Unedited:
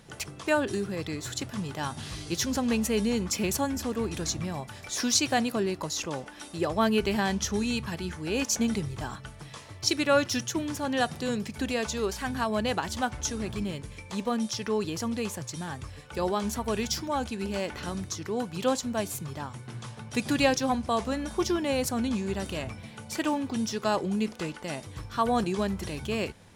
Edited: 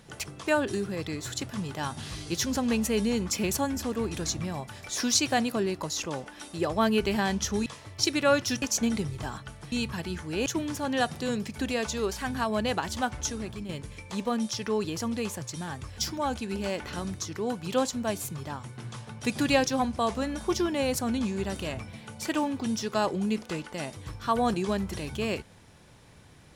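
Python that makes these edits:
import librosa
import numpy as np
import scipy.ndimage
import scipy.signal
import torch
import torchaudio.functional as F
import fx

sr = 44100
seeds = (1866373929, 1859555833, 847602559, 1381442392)

y = fx.edit(x, sr, fx.swap(start_s=7.66, length_s=0.74, other_s=9.5, other_length_s=0.96),
    fx.fade_out_to(start_s=13.23, length_s=0.46, floor_db=-8.0),
    fx.cut(start_s=15.98, length_s=0.9), tone=tone)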